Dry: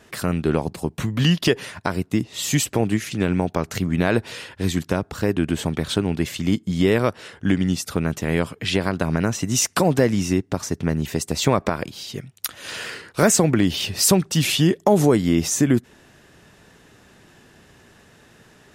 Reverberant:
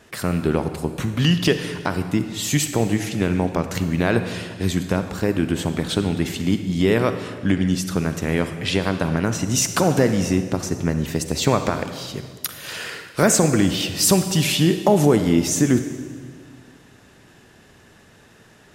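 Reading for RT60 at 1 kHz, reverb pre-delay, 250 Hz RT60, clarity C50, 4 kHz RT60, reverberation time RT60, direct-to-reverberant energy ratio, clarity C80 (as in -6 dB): 1.6 s, 38 ms, 2.1 s, 9.0 dB, 1.5 s, 1.7 s, 8.5 dB, 10.5 dB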